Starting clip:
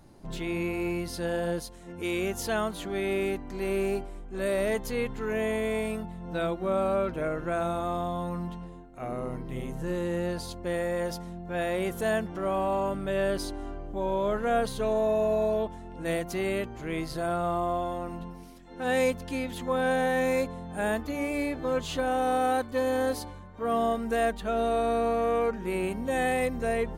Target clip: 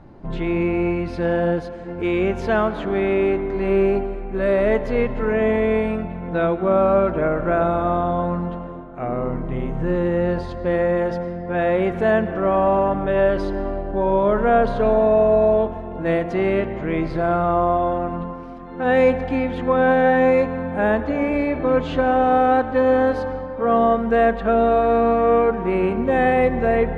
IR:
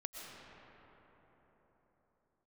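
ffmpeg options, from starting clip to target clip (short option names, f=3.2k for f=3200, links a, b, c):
-filter_complex "[0:a]lowpass=2k,asplit=2[a][b];[1:a]atrim=start_sample=2205,asetrate=52920,aresample=44100[c];[b][c]afir=irnorm=-1:irlink=0,volume=-4dB[d];[a][d]amix=inputs=2:normalize=0,volume=7.5dB"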